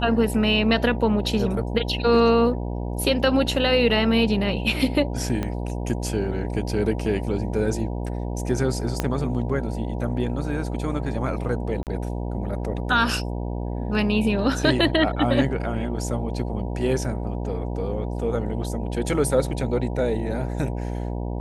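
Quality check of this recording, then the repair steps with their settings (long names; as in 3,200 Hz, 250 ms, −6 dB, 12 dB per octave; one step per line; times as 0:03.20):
mains buzz 60 Hz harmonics 16 −28 dBFS
0:05.43: click −14 dBFS
0:09.00: click −8 dBFS
0:11.83–0:11.87: drop-out 38 ms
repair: click removal
hum removal 60 Hz, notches 16
repair the gap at 0:11.83, 38 ms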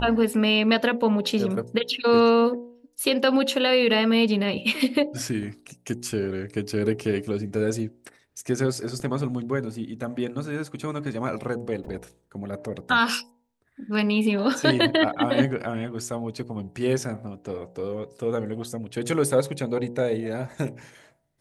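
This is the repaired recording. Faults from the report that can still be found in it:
0:05.43: click
0:09.00: click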